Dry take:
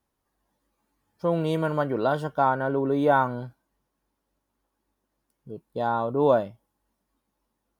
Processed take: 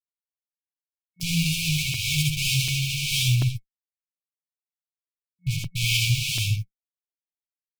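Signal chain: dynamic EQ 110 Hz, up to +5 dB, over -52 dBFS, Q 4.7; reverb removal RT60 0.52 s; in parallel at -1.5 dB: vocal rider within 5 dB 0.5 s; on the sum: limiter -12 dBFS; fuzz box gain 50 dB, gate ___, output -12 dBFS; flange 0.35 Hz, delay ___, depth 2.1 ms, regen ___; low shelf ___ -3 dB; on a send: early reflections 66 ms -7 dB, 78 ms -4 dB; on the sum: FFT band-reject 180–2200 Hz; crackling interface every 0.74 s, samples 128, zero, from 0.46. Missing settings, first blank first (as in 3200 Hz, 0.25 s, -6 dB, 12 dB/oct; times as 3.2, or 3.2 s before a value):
-47 dBFS, 8.2 ms, +26%, 340 Hz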